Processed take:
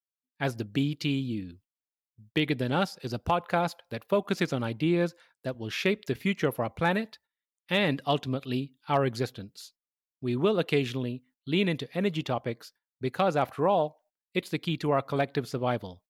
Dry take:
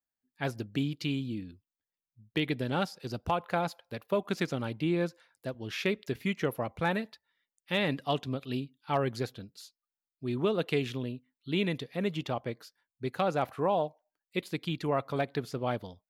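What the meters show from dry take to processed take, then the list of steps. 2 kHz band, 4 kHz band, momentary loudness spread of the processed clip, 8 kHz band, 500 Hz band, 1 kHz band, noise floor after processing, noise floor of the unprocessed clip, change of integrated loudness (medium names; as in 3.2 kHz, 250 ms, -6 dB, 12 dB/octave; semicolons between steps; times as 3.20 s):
+3.5 dB, +3.5 dB, 10 LU, +3.5 dB, +3.5 dB, +3.5 dB, under -85 dBFS, under -85 dBFS, +3.5 dB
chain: gate -60 dBFS, range -19 dB; trim +3.5 dB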